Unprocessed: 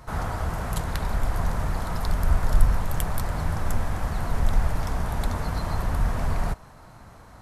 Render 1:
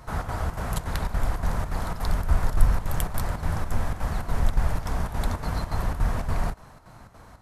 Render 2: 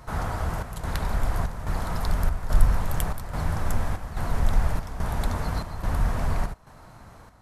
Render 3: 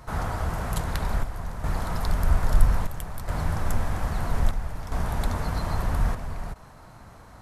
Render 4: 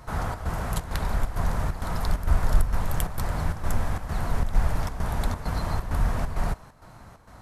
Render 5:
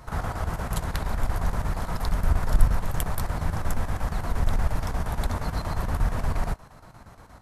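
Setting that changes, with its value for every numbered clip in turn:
square-wave tremolo, speed: 3.5, 1.2, 0.61, 2.2, 8.5 Hertz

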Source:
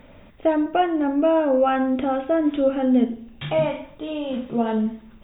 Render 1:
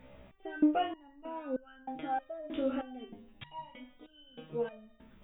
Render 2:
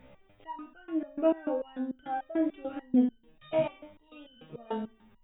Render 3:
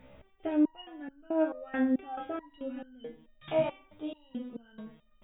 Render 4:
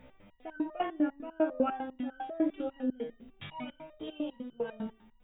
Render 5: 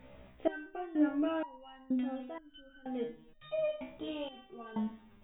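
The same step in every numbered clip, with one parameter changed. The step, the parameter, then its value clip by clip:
step-sequenced resonator, speed: 3.2, 6.8, 4.6, 10, 2.1 Hertz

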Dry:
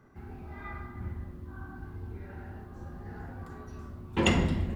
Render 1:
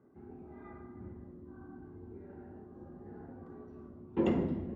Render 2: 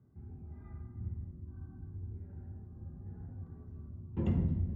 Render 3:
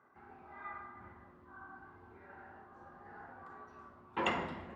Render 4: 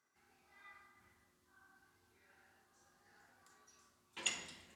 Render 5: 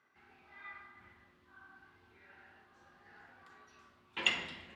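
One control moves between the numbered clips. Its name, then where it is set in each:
resonant band-pass, frequency: 340, 110, 1,100, 7,300, 2,900 Hertz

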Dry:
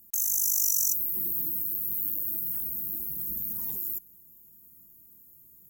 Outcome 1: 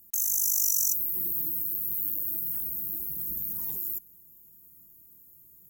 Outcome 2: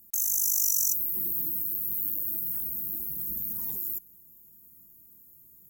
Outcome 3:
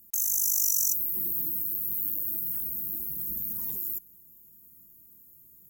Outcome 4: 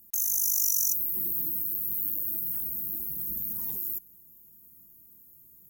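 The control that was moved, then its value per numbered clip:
notch filter, centre frequency: 230, 2,900, 830, 7,700 Hertz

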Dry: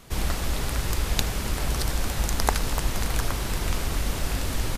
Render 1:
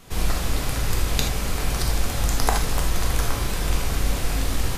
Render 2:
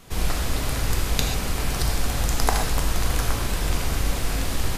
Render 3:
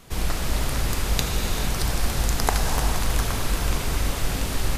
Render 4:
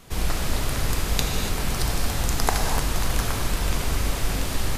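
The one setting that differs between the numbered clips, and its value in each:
reverb whose tail is shaped and stops, gate: 100, 160, 490, 310 milliseconds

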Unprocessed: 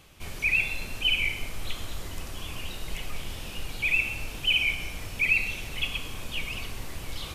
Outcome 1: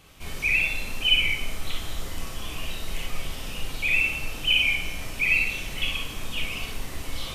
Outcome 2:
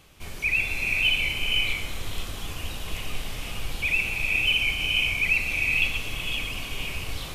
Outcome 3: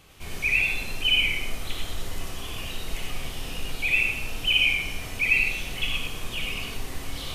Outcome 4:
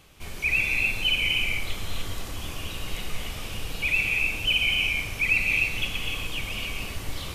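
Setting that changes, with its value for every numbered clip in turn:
reverb whose tail is shaped and stops, gate: 80, 530, 120, 320 milliseconds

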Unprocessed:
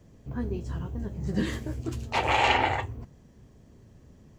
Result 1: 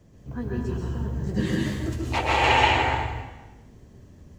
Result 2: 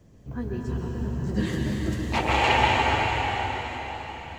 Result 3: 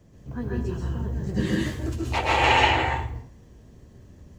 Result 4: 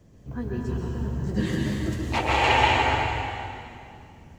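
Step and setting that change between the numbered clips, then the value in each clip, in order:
dense smooth reverb, RT60: 1.1, 5, 0.51, 2.4 seconds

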